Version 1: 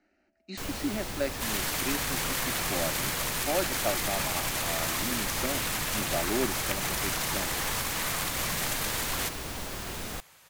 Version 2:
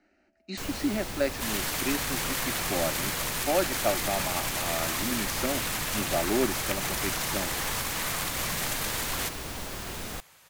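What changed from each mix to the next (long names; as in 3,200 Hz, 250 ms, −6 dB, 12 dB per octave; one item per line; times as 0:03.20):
speech +3.5 dB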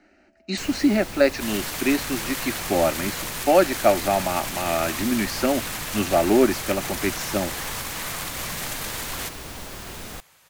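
speech +9.5 dB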